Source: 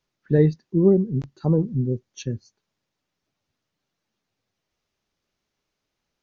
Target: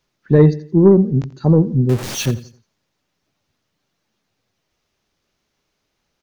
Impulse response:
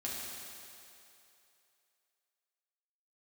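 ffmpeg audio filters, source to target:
-filter_complex "[0:a]asettb=1/sr,asplit=3[a][b][c];[a]atrim=end=1.894[d];[b]atrim=start=1.89:end=2.31,asetpts=PTS-STARTPTS,afade=t=in:d=0.004:c=qsin,afade=t=out:st=0.416:d=0.004:c=qsin,aeval=exprs='val(0)+0.5*0.0355*sgn(val(0))':c=same[e];[c]atrim=start=2.306[f];[d][e]acrossfade=d=0.004:c1=hsin:c2=qsin[g];[g][f]acrossfade=d=0.004:c1=qsin:c2=hsin,aecho=1:1:86|172|258:0.141|0.0466|0.0154,acontrast=63,volume=1.5dB"

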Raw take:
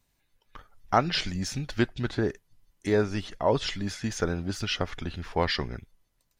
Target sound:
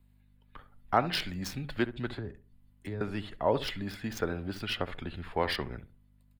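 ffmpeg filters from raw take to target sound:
-filter_complex "[0:a]asettb=1/sr,asplit=3[a][b][c];[a]atrim=end=2.164[d];[b]atrim=start=2.16:end=3.01,asetpts=PTS-STARTPTS,afade=t=in:d=0.004:c=qsin,afade=t=out:st=0.846:d=0.004:c=qsin,acrossover=split=140[e][f];[f]acompressor=threshold=-38dB:ratio=5[g];[e][g]amix=inputs=2:normalize=0[h];[c]atrim=start=3.006[i];[d][h]acrossfade=d=0.004:c1=hsin:c2=qsin[j];[j][i]acrossfade=d=0.004:c1=qsin:c2=hsin,aeval=exprs='val(0)+0.00126*(sin(2*PI*50*n/s)+sin(2*PI*2*50*n/s)/2+sin(2*PI*3*50*n/s)/3+sin(2*PI*4*50*n/s)/4+sin(2*PI*5*50*n/s)/5)':c=same,asplit=2[k][l];[l]adelay=68,lowpass=f=1.5k:p=1,volume=-13.5dB,asplit=2[m][n];[n]adelay=68,lowpass=f=1.5k:p=1,volume=0.27,asplit=2[o][p];[p]adelay=68,lowpass=f=1.5k:p=1,volume=0.27[q];[k][m][o][q]amix=inputs=4:normalize=0,acrossover=split=210|810|5500[r][s][t][u];[r]alimiter=level_in=7.5dB:limit=-24dB:level=0:latency=1,volume=-7.5dB[v];[u]aeval=exprs='0.0562*(cos(1*acos(clip(val(0)/0.0562,-1,1)))-cos(1*PI/2))+0.0158*(cos(4*acos(clip(val(0)/0.0562,-1,1)))-cos(4*PI/2))+0.0141*(cos(7*acos(clip(val(0)/0.0562,-1,1)))-cos(7*PI/2))':c=same[w];[v][s][t][w]amix=inputs=4:normalize=0,volume=-3dB"

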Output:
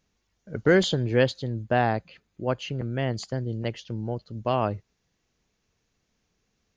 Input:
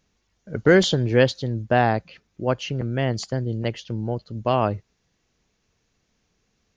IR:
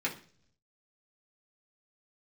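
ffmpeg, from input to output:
-filter_complex "[0:a]asettb=1/sr,asplit=3[a][b][c];[a]atrim=end=0.804[d];[b]atrim=start=0.8:end=3.25,asetpts=PTS-STARTPTS,afade=t=in:d=0.004:c=qsin,afade=t=out:st=2.446:d=0.004:c=qsin,bandreject=f=5.6k:w=7.5[e];[c]atrim=start=3.246[f];[d][e]acrossfade=d=0.004:c1=hsin:c2=qsin[g];[g][f]acrossfade=d=0.004:c1=qsin:c2=hsin,volume=-4dB"

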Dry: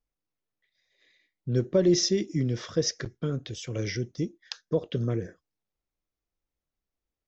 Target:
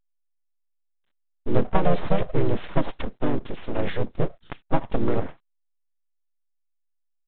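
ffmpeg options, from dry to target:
-filter_complex "[0:a]agate=range=-33dB:threshold=-54dB:ratio=3:detection=peak,highshelf=f=2.6k:g=-7,acrossover=split=200[a][b];[b]acompressor=threshold=-24dB:ratio=10[c];[a][c]amix=inputs=2:normalize=0,aeval=exprs='abs(val(0))':c=same,asplit=3[d][e][f];[e]asetrate=37084,aresample=44100,atempo=1.18921,volume=-2dB[g];[f]asetrate=52444,aresample=44100,atempo=0.840896,volume=-15dB[h];[d][g][h]amix=inputs=3:normalize=0,volume=6dB" -ar 8000 -c:a pcm_alaw

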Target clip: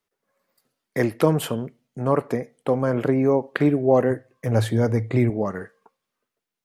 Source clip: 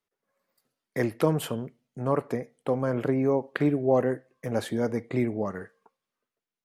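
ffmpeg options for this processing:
-filter_complex "[0:a]asettb=1/sr,asplit=3[a][b][c];[a]atrim=end=4.104[d];[b]atrim=start=4.1:end=5.3,asetpts=PTS-STARTPTS,afade=t=in:d=0.004:c=qsin,afade=t=out:st=1.196:d=0.004:c=qsin,equalizer=f=110:w=6.2:g=14.5[e];[c]atrim=start=5.296[f];[d][e]acrossfade=d=0.004:c1=hsin:c2=qsin[g];[g][f]acrossfade=d=0.004:c1=qsin:c2=hsin,volume=5dB"

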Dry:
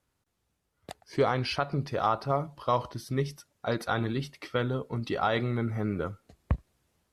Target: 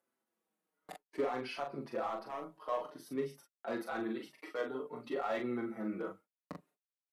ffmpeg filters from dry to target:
-filter_complex "[0:a]agate=range=-59dB:threshold=-45dB:ratio=16:detection=peak,highpass=f=230:w=0.5412,highpass=f=230:w=1.3066,equalizer=f=5k:t=o:w=1.8:g=-10,alimiter=limit=-20dB:level=0:latency=1:release=40,acompressor=mode=upward:threshold=-38dB:ratio=2.5,asoftclip=type=hard:threshold=-23.5dB,aecho=1:1:23|41:0.178|0.596,asplit=2[a][b];[b]adelay=5.5,afreqshift=-0.54[c];[a][c]amix=inputs=2:normalize=1,volume=-3.5dB"

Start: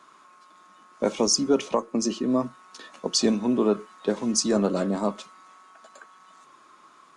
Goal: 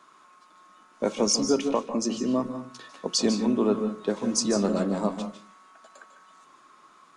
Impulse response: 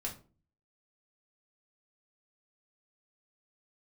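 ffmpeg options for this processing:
-filter_complex "[0:a]asplit=2[a][b];[1:a]atrim=start_sample=2205,adelay=148[c];[b][c]afir=irnorm=-1:irlink=0,volume=-8.5dB[d];[a][d]amix=inputs=2:normalize=0,volume=-2dB"

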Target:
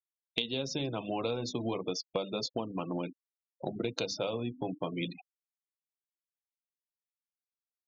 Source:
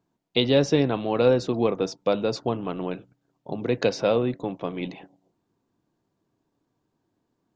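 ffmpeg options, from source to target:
-filter_complex "[0:a]flanger=delay=3.5:depth=3.4:regen=-60:speed=0.35:shape=sinusoidal,adynamicequalizer=threshold=0.002:dfrequency=5500:dqfactor=2.2:tfrequency=5500:tqfactor=2.2:attack=5:release=100:ratio=0.375:range=2.5:mode=cutabove:tftype=bell,asplit=2[a][b];[b]aeval=exprs='sgn(val(0))*max(abs(val(0))-0.00944,0)':c=same,volume=-6.5dB[c];[a][c]amix=inputs=2:normalize=0,asetrate=42336,aresample=44100,bandreject=f=50:t=h:w=6,bandreject=f=100:t=h:w=6,bandreject=f=150:t=h:w=6,bandreject=f=200:t=h:w=6,bandreject=f=250:t=h:w=6,bandreject=f=300:t=h:w=6,crystalizer=i=5:c=0,bandreject=f=430:w=12,afftfilt=real='re*gte(hypot(re,im),0.0282)':imag='im*gte(hypot(re,im),0.0282)':win_size=1024:overlap=0.75,equalizer=f=1.8k:w=3.9:g=-15,acompressor=threshold=-31dB:ratio=10,volume=1dB"

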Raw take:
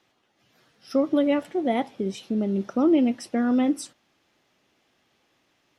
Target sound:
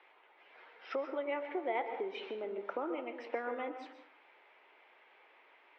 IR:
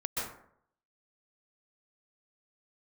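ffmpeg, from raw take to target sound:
-filter_complex "[0:a]acompressor=threshold=-33dB:ratio=12,highpass=f=410:w=0.5412,highpass=f=410:w=1.3066,equalizer=f=430:t=q:w=4:g=4,equalizer=f=930:t=q:w=4:g=9,equalizer=f=1.5k:t=q:w=4:g=3,equalizer=f=2.2k:t=q:w=4:g=9,lowpass=f=3k:w=0.5412,lowpass=f=3k:w=1.3066,asplit=2[a][b];[1:a]atrim=start_sample=2205[c];[b][c]afir=irnorm=-1:irlink=0,volume=-9.5dB[d];[a][d]amix=inputs=2:normalize=0"

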